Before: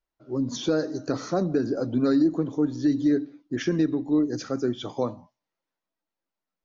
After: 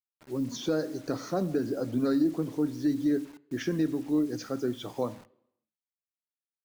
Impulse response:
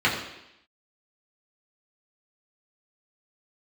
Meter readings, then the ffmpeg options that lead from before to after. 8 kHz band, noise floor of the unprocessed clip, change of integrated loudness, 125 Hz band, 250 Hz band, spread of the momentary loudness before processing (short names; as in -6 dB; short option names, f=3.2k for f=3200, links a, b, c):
n/a, under -85 dBFS, -4.5 dB, -4.5 dB, -4.5 dB, 8 LU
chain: -filter_complex "[0:a]acrusher=bits=7:mix=0:aa=0.000001,asplit=2[a][b];[1:a]atrim=start_sample=2205[c];[b][c]afir=irnorm=-1:irlink=0,volume=-34dB[d];[a][d]amix=inputs=2:normalize=0,volume=-4.5dB"